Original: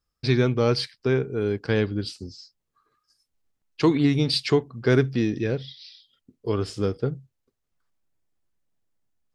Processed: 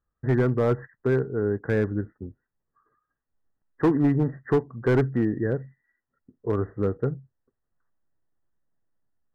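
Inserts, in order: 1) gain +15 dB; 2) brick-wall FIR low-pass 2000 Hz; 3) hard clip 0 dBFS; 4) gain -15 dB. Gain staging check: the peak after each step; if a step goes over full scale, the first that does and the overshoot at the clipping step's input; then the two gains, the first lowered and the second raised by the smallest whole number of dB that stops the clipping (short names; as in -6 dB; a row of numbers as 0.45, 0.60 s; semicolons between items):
+7.5, +7.5, 0.0, -15.0 dBFS; step 1, 7.5 dB; step 1 +7 dB, step 4 -7 dB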